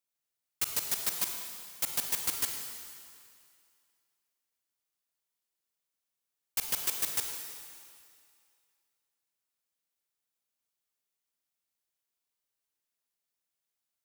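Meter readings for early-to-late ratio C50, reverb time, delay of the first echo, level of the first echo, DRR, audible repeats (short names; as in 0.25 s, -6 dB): 4.0 dB, 2.2 s, none, none, 3.0 dB, none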